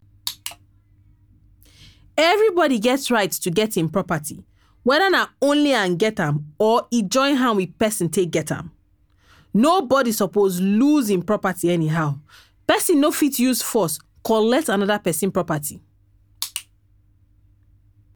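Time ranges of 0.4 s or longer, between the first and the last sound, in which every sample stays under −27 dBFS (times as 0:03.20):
0:00.51–0:02.18
0:04.32–0:04.86
0:08.61–0:09.55
0:12.14–0:12.69
0:15.70–0:16.42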